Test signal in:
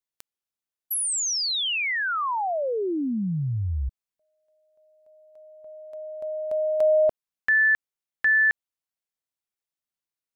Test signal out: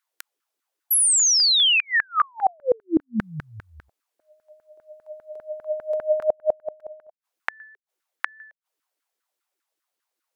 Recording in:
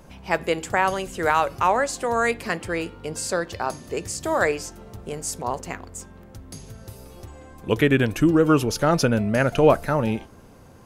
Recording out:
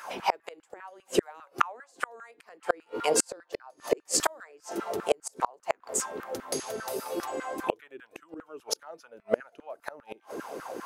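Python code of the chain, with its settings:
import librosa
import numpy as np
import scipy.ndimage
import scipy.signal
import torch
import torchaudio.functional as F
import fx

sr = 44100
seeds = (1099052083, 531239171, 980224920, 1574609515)

y = fx.vibrato(x, sr, rate_hz=4.8, depth_cents=6.9)
y = fx.filter_lfo_highpass(y, sr, shape='saw_down', hz=5.0, low_hz=280.0, high_hz=1600.0, q=4.4)
y = fx.gate_flip(y, sr, shuts_db=-17.0, range_db=-39)
y = y * librosa.db_to_amplitude(8.0)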